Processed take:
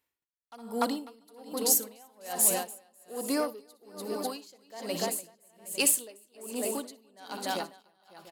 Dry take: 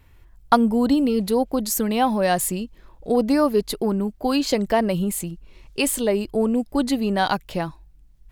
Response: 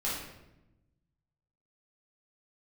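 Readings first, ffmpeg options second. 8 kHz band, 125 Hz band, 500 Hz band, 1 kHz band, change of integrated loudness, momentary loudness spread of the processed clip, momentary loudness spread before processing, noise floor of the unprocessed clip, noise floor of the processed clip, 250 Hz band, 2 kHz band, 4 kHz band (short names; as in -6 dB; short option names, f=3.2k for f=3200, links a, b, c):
+1.5 dB, -20.5 dB, -13.0 dB, -13.5 dB, -7.5 dB, 22 LU, 10 LU, -52 dBFS, -84 dBFS, -17.0 dB, -10.0 dB, -6.5 dB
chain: -filter_complex "[0:a]agate=range=-16dB:threshold=-45dB:ratio=16:detection=peak,highpass=f=170:p=1,equalizer=f=220:t=o:w=2.2:g=3,aecho=1:1:61|293|546|690|764|857:0.211|0.473|0.355|0.106|0.158|0.119,asplit=2[a][b];[1:a]atrim=start_sample=2205,adelay=54[c];[b][c]afir=irnorm=-1:irlink=0,volume=-25dB[d];[a][d]amix=inputs=2:normalize=0,asoftclip=type=tanh:threshold=-9.5dB,bass=f=250:g=-15,treble=f=4k:g=10,aeval=exprs='val(0)*pow(10,-31*(0.5-0.5*cos(2*PI*1.2*n/s))/20)':c=same,volume=-5.5dB"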